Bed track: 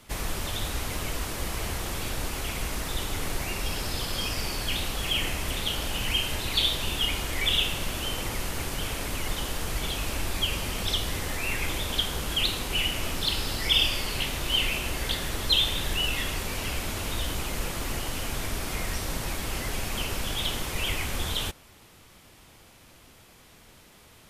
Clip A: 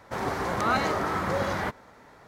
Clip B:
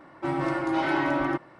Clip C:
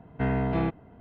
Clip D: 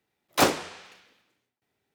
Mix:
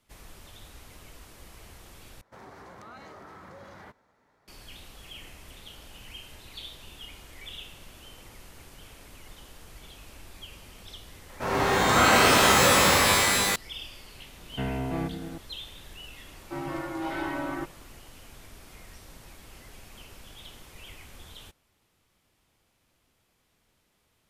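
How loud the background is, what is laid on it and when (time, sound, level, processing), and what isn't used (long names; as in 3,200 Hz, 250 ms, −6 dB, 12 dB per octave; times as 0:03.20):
bed track −17.5 dB
0:02.21: overwrite with A −15.5 dB + downward compressor 4 to 1, threshold −28 dBFS
0:11.29: mix in A −1.5 dB + reverb with rising layers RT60 2.2 s, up +12 semitones, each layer −2 dB, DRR −6 dB
0:14.38: mix in C −4.5 dB + echo whose low-pass opens from repeat to repeat 103 ms, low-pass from 200 Hz, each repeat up 1 octave, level −6 dB
0:16.28: mix in B −7 dB
not used: D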